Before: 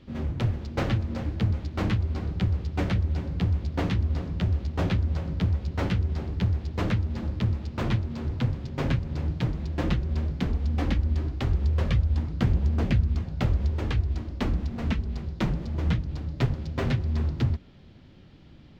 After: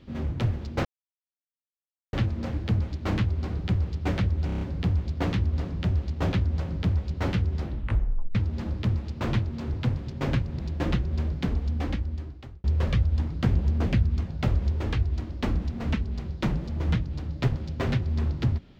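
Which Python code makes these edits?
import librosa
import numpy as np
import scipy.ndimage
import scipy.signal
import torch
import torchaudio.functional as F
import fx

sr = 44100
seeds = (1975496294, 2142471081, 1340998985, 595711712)

y = fx.edit(x, sr, fx.insert_silence(at_s=0.85, length_s=1.28),
    fx.stutter(start_s=3.18, slice_s=0.03, count=6),
    fx.tape_stop(start_s=6.17, length_s=0.75),
    fx.cut(start_s=9.16, length_s=0.41),
    fx.fade_out_span(start_s=10.54, length_s=1.08), tone=tone)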